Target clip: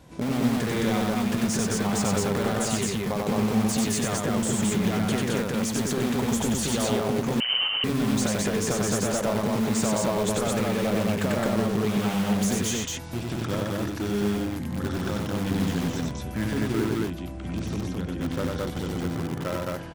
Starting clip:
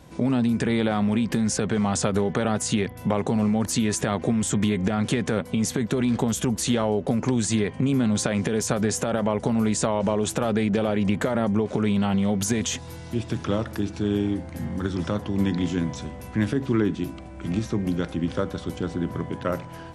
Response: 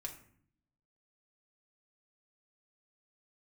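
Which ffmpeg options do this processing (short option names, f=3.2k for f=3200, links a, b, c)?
-filter_complex "[0:a]asettb=1/sr,asplit=3[a][b][c];[a]atrim=end=16.854[d];[b]atrim=start=16.85:end=18.2,asetpts=PTS-STARTPTS,afade=t=in:d=0.004:c=qsin,afade=t=out:st=1.346:d=0.004:c=qsin,acrossover=split=130|440[e][f][g];[e]acompressor=threshold=-32dB:ratio=4[h];[f]acompressor=threshold=-33dB:ratio=4[i];[g]acompressor=threshold=-38dB:ratio=4[j];[h][i][j]amix=inputs=3:normalize=0[k];[c]atrim=start=18.196[l];[d][k]acrossfade=d=0.004:c1=hsin:c2=qsin[m];[m][l]acrossfade=d=0.004:c1=qsin:c2=hsin,asplit=2[n][o];[o]aeval=exprs='(mod(11.2*val(0)+1,2)-1)/11.2':c=same,volume=-7dB[p];[n][p]amix=inputs=2:normalize=0,aecho=1:1:93.29|215.7:0.794|0.891,asettb=1/sr,asplit=3[q][r][s];[q]atrim=end=7.404[t];[r]atrim=start=7.4:end=7.84,asetpts=PTS-STARTPTS,afade=t=in:d=0.004:c=qsin,afade=t=out:st=0.436:d=0.004:c=qsin,lowpass=f=2.7k:t=q:w=0.5098,lowpass=f=2.7k:t=q:w=0.6013,lowpass=f=2.7k:t=q:w=0.9,lowpass=f=2.7k:t=q:w=2.563,afreqshift=-3200[u];[s]atrim=start=7.836[v];[t][u]acrossfade=d=0.004:c1=hsin:c2=qsin[w];[w][v]acrossfade=d=0.004:c1=qsin:c2=hsin,volume=-6dB"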